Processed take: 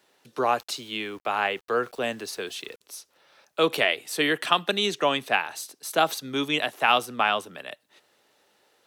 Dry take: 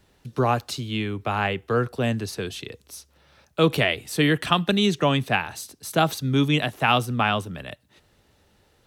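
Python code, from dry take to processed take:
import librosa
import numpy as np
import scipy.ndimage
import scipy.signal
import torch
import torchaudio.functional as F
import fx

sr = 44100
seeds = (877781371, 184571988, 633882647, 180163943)

y = scipy.signal.sosfilt(scipy.signal.butter(2, 410.0, 'highpass', fs=sr, output='sos'), x)
y = fx.sample_gate(y, sr, floor_db=-49.5, at=(0.6, 2.81))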